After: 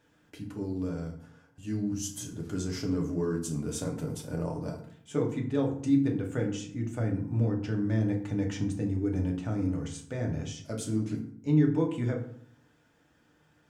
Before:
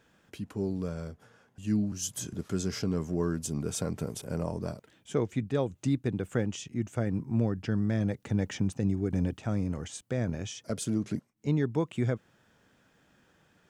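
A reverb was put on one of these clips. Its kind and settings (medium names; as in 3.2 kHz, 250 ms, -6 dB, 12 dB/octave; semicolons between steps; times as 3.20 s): FDN reverb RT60 0.6 s, low-frequency decay 1.35×, high-frequency decay 0.6×, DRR 0 dB; trim -4.5 dB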